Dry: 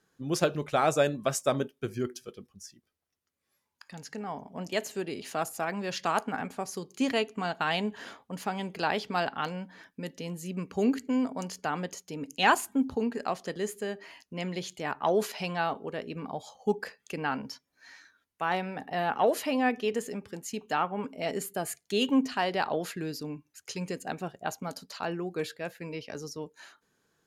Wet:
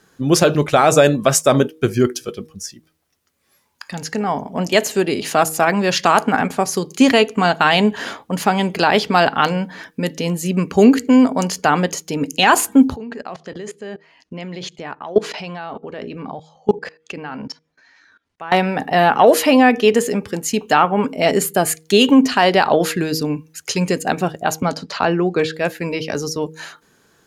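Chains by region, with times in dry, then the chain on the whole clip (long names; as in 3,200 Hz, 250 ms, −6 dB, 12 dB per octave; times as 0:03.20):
0:12.96–0:18.52: high-frequency loss of the air 100 metres + output level in coarse steps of 23 dB
0:24.62–0:25.54: high-frequency loss of the air 100 metres + multiband upward and downward compressor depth 40%
whole clip: hum removal 158.2 Hz, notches 3; boost into a limiter +17.5 dB; level −1 dB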